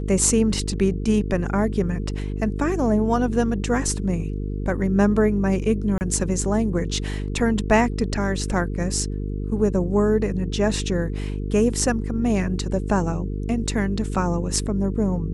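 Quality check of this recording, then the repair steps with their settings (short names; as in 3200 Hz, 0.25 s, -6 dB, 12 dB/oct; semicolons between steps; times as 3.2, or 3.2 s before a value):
buzz 50 Hz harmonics 9 -27 dBFS
5.98–6.01 gap 29 ms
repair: de-hum 50 Hz, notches 9; interpolate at 5.98, 29 ms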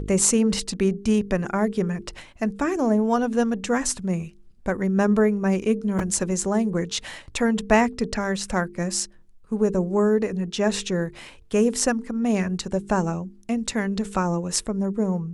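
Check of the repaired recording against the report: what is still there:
none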